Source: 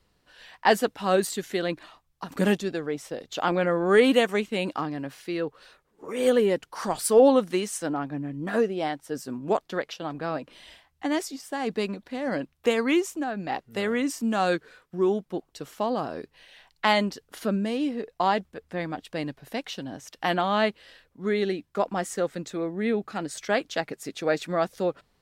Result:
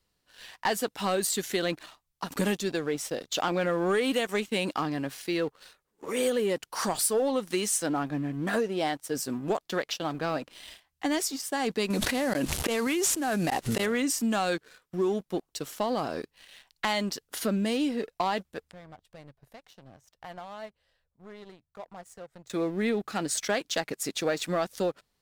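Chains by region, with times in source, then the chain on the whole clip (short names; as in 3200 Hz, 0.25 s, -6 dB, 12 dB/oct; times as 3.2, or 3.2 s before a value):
11.9–13.86 CVSD 64 kbps + flipped gate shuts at -19 dBFS, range -32 dB + fast leveller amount 100%
18.71–22.5 compressor 2:1, threshold -37 dBFS + EQ curve 120 Hz 0 dB, 280 Hz -17 dB, 640 Hz -6 dB, 2600 Hz -17 dB
whole clip: high shelf 3500 Hz +9.5 dB; compressor 6:1, threshold -24 dBFS; sample leveller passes 2; gain -6.5 dB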